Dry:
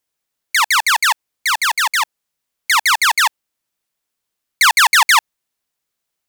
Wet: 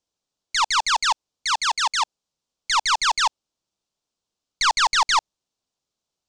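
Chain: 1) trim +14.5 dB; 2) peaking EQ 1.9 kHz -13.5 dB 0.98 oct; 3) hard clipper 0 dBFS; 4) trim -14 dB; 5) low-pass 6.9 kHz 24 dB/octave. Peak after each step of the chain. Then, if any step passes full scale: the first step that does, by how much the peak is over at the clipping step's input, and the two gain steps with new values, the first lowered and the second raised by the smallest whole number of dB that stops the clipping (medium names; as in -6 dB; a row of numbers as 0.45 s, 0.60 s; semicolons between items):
+9.5 dBFS, +9.5 dBFS, 0.0 dBFS, -14.0 dBFS, -13.5 dBFS; step 1, 9.5 dB; step 1 +4.5 dB, step 4 -4 dB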